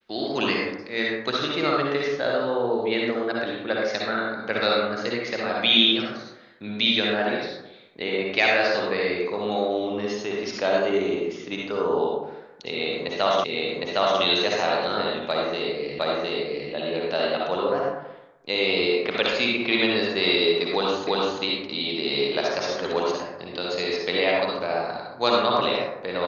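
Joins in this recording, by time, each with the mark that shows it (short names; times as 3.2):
13.44 repeat of the last 0.76 s
15.99 repeat of the last 0.71 s
21.07 repeat of the last 0.34 s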